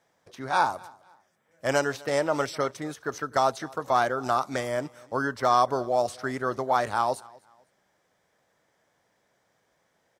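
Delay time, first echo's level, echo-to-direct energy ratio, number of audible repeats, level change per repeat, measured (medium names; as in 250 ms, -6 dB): 253 ms, -24.0 dB, -23.5 dB, 2, -10.5 dB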